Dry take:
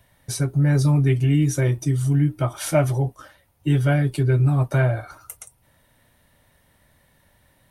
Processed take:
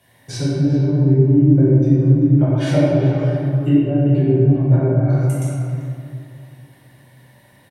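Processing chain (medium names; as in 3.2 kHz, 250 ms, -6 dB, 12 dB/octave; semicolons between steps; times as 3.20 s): low-pass that closes with the level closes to 360 Hz, closed at -16.5 dBFS; high-pass 150 Hz 12 dB/octave; band-stop 1.3 kHz, Q 5.3; speakerphone echo 390 ms, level -9 dB; reverberation RT60 2.4 s, pre-delay 6 ms, DRR -9 dB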